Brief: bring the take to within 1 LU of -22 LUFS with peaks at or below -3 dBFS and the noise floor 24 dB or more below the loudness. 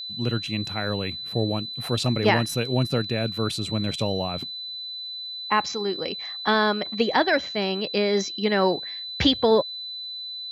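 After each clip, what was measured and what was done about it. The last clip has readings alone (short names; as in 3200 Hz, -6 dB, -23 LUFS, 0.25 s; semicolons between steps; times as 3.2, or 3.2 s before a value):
ticks 24/s; steady tone 4000 Hz; tone level -32 dBFS; loudness -25.0 LUFS; peak -6.5 dBFS; loudness target -22.0 LUFS
-> de-click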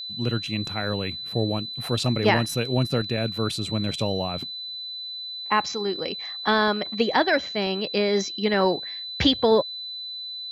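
ticks 0/s; steady tone 4000 Hz; tone level -32 dBFS
-> notch 4000 Hz, Q 30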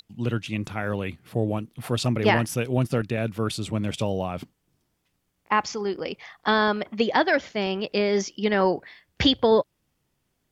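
steady tone none; loudness -25.0 LUFS; peak -6.5 dBFS; loudness target -22.0 LUFS
-> gain +3 dB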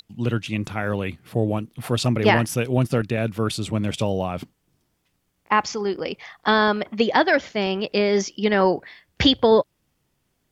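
loudness -22.0 LUFS; peak -3.5 dBFS; noise floor -72 dBFS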